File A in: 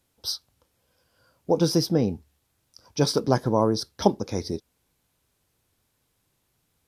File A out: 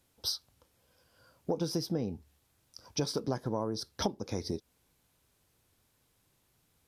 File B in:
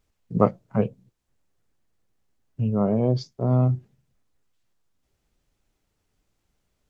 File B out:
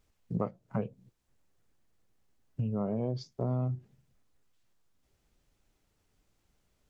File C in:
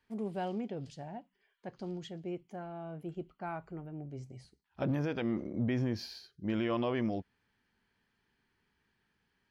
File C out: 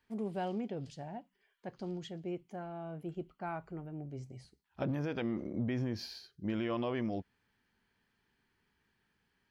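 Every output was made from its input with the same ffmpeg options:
-af "acompressor=threshold=-30dB:ratio=5"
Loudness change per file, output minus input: -10.5, -10.5, -2.0 LU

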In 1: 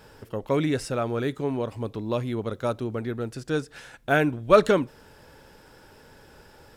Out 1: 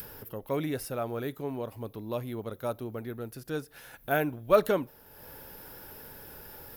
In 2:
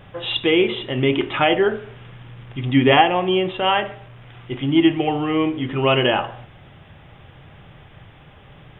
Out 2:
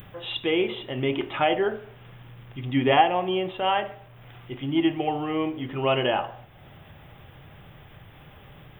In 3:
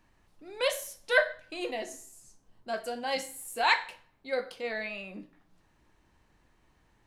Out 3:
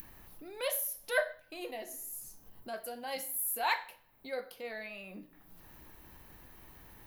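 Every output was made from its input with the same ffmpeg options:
-af "adynamicequalizer=threshold=0.0282:dfrequency=710:dqfactor=1.5:tfrequency=710:tqfactor=1.5:attack=5:release=100:ratio=0.375:range=2.5:mode=boostabove:tftype=bell,acompressor=mode=upward:threshold=-32dB:ratio=2.5,aexciter=amount=6.3:drive=9.4:freq=11k,volume=-8dB"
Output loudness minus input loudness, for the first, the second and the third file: -6.0, -6.5, -5.0 LU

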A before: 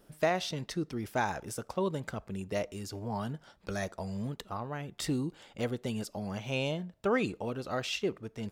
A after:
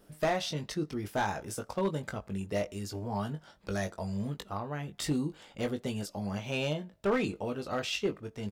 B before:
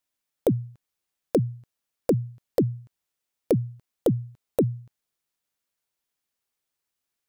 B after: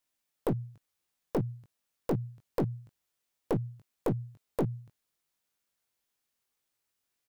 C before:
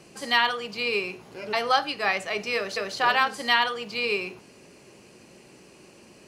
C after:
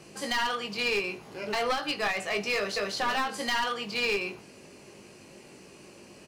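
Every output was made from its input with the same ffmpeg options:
-filter_complex "[0:a]asplit=2[a][b];[b]adelay=20,volume=-6.5dB[c];[a][c]amix=inputs=2:normalize=0,aeval=exprs='clip(val(0),-1,0.0668)':c=same,alimiter=limit=-18dB:level=0:latency=1:release=132"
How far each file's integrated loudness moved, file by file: +0.5, -7.5, -4.0 LU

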